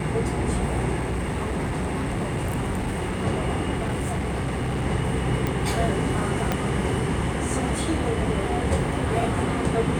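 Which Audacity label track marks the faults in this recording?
0.990000	3.250000	clipped -22.5 dBFS
3.750000	4.860000	clipped -22.5 dBFS
5.470000	5.470000	pop
6.520000	6.520000	pop -9 dBFS

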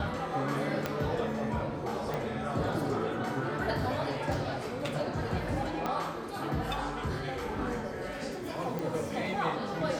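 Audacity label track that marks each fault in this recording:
0.860000	0.860000	pop -15 dBFS
2.140000	2.140000	pop
5.860000	5.860000	pop -18 dBFS
8.790000	8.790000	pop

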